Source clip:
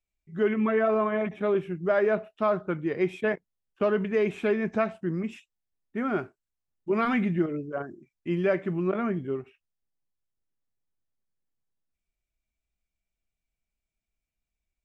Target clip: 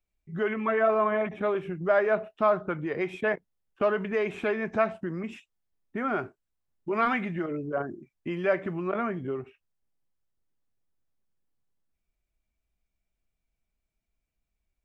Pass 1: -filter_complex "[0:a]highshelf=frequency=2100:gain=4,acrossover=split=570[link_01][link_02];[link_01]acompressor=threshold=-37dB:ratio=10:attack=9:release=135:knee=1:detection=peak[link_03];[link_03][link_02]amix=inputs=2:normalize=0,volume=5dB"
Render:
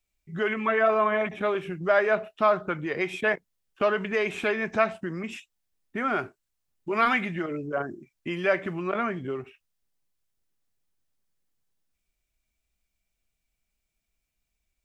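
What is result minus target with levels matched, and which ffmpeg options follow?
4,000 Hz band +6.0 dB
-filter_complex "[0:a]highshelf=frequency=2100:gain=-7.5,acrossover=split=570[link_01][link_02];[link_01]acompressor=threshold=-37dB:ratio=10:attack=9:release=135:knee=1:detection=peak[link_03];[link_03][link_02]amix=inputs=2:normalize=0,volume=5dB"

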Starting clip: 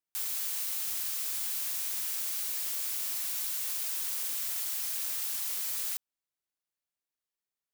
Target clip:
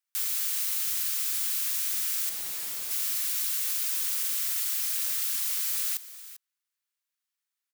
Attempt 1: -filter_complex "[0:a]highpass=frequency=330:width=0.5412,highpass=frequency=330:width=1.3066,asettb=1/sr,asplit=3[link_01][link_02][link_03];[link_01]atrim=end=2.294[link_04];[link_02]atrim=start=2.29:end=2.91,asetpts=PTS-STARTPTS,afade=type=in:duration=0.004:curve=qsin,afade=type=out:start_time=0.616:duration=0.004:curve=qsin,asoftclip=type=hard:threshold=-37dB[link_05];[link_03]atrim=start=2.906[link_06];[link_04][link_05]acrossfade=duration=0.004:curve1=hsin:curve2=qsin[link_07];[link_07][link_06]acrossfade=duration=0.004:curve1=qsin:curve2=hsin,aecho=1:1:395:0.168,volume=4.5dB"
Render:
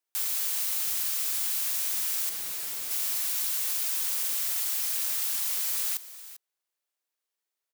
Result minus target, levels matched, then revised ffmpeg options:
250 Hz band +4.0 dB
-filter_complex "[0:a]highpass=frequency=1100:width=0.5412,highpass=frequency=1100:width=1.3066,asettb=1/sr,asplit=3[link_01][link_02][link_03];[link_01]atrim=end=2.294[link_04];[link_02]atrim=start=2.29:end=2.91,asetpts=PTS-STARTPTS,afade=type=in:duration=0.004:curve=qsin,afade=type=out:start_time=0.616:duration=0.004:curve=qsin,asoftclip=type=hard:threshold=-37dB[link_05];[link_03]atrim=start=2.906[link_06];[link_04][link_05]acrossfade=duration=0.004:curve1=hsin:curve2=qsin[link_07];[link_07][link_06]acrossfade=duration=0.004:curve1=qsin:curve2=hsin,aecho=1:1:395:0.168,volume=4.5dB"

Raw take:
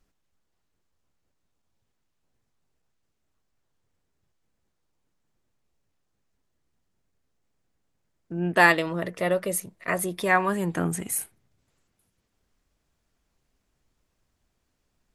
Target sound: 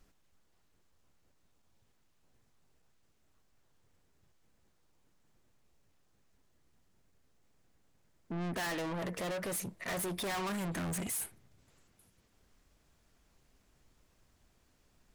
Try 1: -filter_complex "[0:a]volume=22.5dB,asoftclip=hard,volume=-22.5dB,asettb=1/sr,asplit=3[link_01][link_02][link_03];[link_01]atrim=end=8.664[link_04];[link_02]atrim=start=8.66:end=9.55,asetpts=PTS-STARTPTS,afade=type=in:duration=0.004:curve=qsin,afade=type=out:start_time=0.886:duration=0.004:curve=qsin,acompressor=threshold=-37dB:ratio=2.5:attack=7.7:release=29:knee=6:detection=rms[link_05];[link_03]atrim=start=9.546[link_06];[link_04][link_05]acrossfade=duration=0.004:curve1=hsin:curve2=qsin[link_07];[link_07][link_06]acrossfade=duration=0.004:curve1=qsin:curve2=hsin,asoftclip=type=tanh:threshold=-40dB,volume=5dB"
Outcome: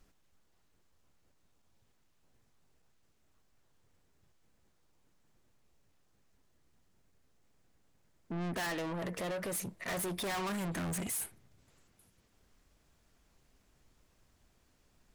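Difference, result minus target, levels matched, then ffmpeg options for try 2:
gain into a clipping stage and back: distortion −4 dB
-filter_complex "[0:a]volume=32dB,asoftclip=hard,volume=-32dB,asettb=1/sr,asplit=3[link_01][link_02][link_03];[link_01]atrim=end=8.664[link_04];[link_02]atrim=start=8.66:end=9.55,asetpts=PTS-STARTPTS,afade=type=in:duration=0.004:curve=qsin,afade=type=out:start_time=0.886:duration=0.004:curve=qsin,acompressor=threshold=-37dB:ratio=2.5:attack=7.7:release=29:knee=6:detection=rms[link_05];[link_03]atrim=start=9.546[link_06];[link_04][link_05]acrossfade=duration=0.004:curve1=hsin:curve2=qsin[link_07];[link_07][link_06]acrossfade=duration=0.004:curve1=qsin:curve2=hsin,asoftclip=type=tanh:threshold=-40dB,volume=5dB"

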